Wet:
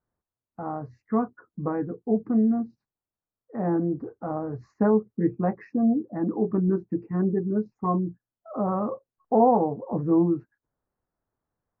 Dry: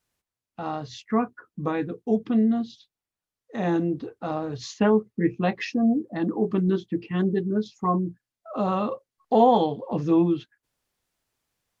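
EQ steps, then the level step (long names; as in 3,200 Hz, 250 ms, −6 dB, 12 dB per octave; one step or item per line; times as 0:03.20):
Butterworth band-reject 3,300 Hz, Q 0.58
high-frequency loss of the air 410 metres
0.0 dB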